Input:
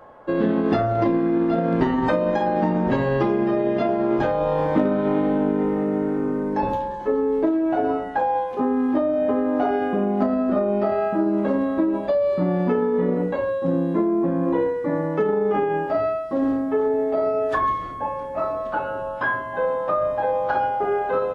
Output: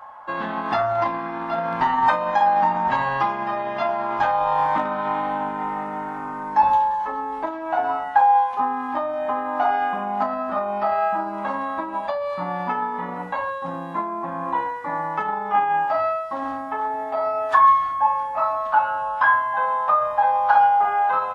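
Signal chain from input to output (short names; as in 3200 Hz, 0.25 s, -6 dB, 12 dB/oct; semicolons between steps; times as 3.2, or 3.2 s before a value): resonant low shelf 620 Hz -12.5 dB, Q 3; gain +2.5 dB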